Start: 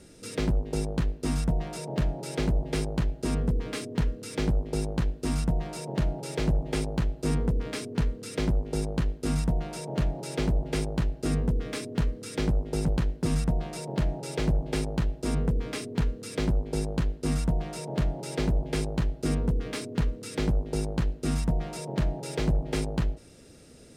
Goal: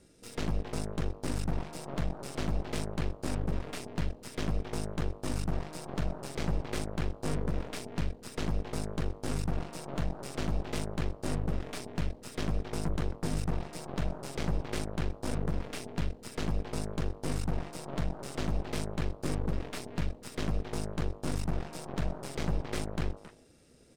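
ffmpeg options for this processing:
-filter_complex "[0:a]asplit=2[a][b];[b]adelay=270,highpass=300,lowpass=3.4k,asoftclip=type=hard:threshold=-27dB,volume=-6dB[c];[a][c]amix=inputs=2:normalize=0,aeval=exprs='0.168*(cos(1*acos(clip(val(0)/0.168,-1,1)))-cos(1*PI/2))+0.0188*(cos(3*acos(clip(val(0)/0.168,-1,1)))-cos(3*PI/2))+0.0266*(cos(4*acos(clip(val(0)/0.168,-1,1)))-cos(4*PI/2))+0.0188*(cos(8*acos(clip(val(0)/0.168,-1,1)))-cos(8*PI/2))':c=same,volume=-6dB"

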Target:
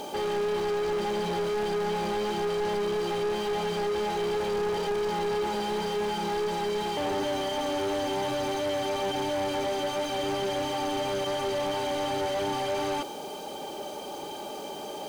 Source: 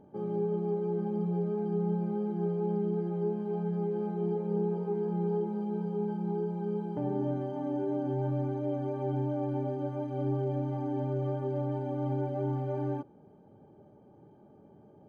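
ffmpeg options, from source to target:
-filter_complex "[0:a]aexciter=amount=11.2:drive=7.4:freq=2.7k,highpass=f=1k:p=1,asplit=2[a][b];[b]highpass=f=720:p=1,volume=35dB,asoftclip=type=tanh:threshold=-28.5dB[c];[a][c]amix=inputs=2:normalize=0,lowpass=f=1.5k:p=1,volume=-6dB,volume=7dB"

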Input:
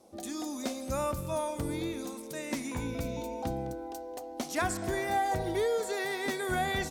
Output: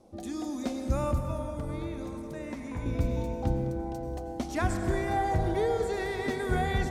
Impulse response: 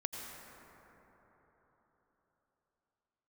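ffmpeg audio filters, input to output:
-filter_complex "[0:a]asettb=1/sr,asplit=3[a][b][c];[a]atrim=end=1.184[d];[b]atrim=start=1.18:end=2.86,asetpts=PTS-STARTPTS,afade=t=in:d=0.004:c=qsin,afade=t=out:st=1.676:d=0.004:c=qsin,acrossover=split=540|2200[e][f][g];[e]acompressor=threshold=-41dB:ratio=4[h];[f]acompressor=threshold=-42dB:ratio=4[i];[g]acompressor=threshold=-52dB:ratio=4[j];[h][i][j]amix=inputs=3:normalize=0[k];[c]atrim=start=2.856[l];[d][k]acrossfade=d=0.004:c1=hsin:c2=qsin[m];[m][l]acrossfade=d=0.004:c1=qsin:c2=hsin,aemphasis=mode=reproduction:type=bsi,asplit=2[n][o];[1:a]atrim=start_sample=2205,highshelf=f=6.2k:g=11.5[p];[o][p]afir=irnorm=-1:irlink=0,volume=0.5dB[q];[n][q]amix=inputs=2:normalize=0,volume=-6.5dB"

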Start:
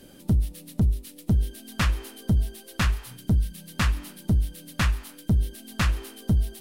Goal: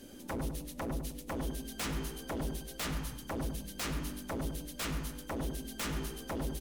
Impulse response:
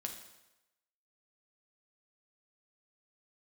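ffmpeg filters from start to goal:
-filter_complex "[0:a]equalizer=f=160:t=o:w=0.33:g=-9,equalizer=f=250:t=o:w=0.33:g=6,equalizer=f=6.3k:t=o:w=0.33:g=6,aeval=exprs='0.0398*(abs(mod(val(0)/0.0398+3,4)-2)-1)':c=same,asplit=2[a][b];[b]adelay=101,lowpass=f=1.3k:p=1,volume=-4dB,asplit=2[c][d];[d]adelay=101,lowpass=f=1.3k:p=1,volume=0.43,asplit=2[e][f];[f]adelay=101,lowpass=f=1.3k:p=1,volume=0.43,asplit=2[g][h];[h]adelay=101,lowpass=f=1.3k:p=1,volume=0.43,asplit=2[i][j];[j]adelay=101,lowpass=f=1.3k:p=1,volume=0.43[k];[a][c][e][g][i][k]amix=inputs=6:normalize=0,volume=-3dB"

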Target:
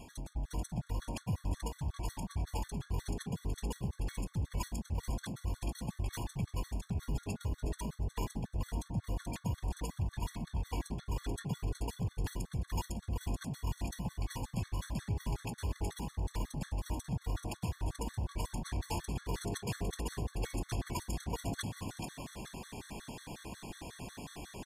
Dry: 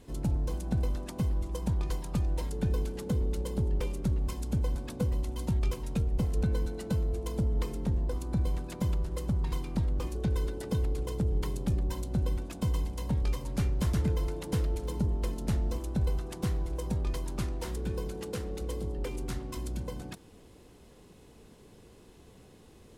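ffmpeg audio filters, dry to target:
-filter_complex "[0:a]lowshelf=f=240:g=-8,aecho=1:1:1.1:0.54,areverse,acompressor=threshold=-45dB:ratio=20,areverse,asetrate=41101,aresample=44100,asplit=6[a][b][c][d][e][f];[b]adelay=433,afreqshift=48,volume=-6dB[g];[c]adelay=866,afreqshift=96,volume=-13.5dB[h];[d]adelay=1299,afreqshift=144,volume=-21.1dB[i];[e]adelay=1732,afreqshift=192,volume=-28.6dB[j];[f]adelay=2165,afreqshift=240,volume=-36.1dB[k];[a][g][h][i][j][k]amix=inputs=6:normalize=0,afftfilt=real='re*gt(sin(2*PI*5.5*pts/sr)*(1-2*mod(floor(b*sr/1024/1100),2)),0)':imag='im*gt(sin(2*PI*5.5*pts/sr)*(1-2*mod(floor(b*sr/1024/1100),2)),0)':win_size=1024:overlap=0.75,volume=13.5dB"

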